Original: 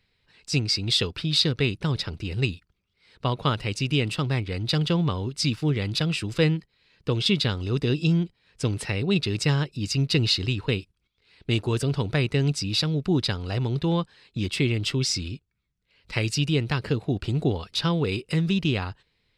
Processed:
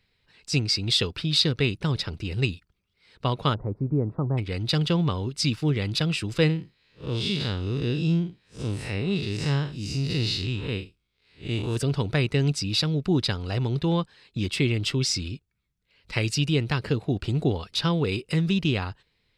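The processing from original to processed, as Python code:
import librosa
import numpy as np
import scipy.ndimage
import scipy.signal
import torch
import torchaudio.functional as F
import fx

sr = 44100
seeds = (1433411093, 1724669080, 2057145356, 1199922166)

y = fx.cheby2_lowpass(x, sr, hz=2700.0, order=4, stop_db=50, at=(3.53, 4.37), fade=0.02)
y = fx.spec_blur(y, sr, span_ms=122.0, at=(6.48, 11.75), fade=0.02)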